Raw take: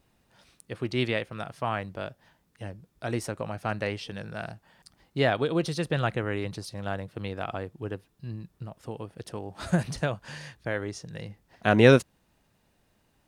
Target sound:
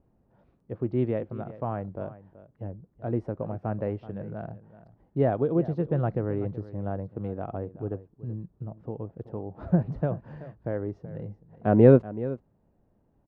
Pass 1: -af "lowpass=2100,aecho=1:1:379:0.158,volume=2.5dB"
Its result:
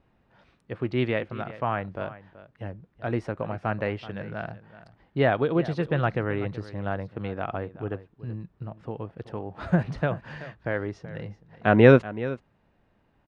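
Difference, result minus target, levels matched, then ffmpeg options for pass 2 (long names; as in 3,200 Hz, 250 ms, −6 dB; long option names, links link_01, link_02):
2,000 Hz band +14.0 dB
-af "lowpass=640,aecho=1:1:379:0.158,volume=2.5dB"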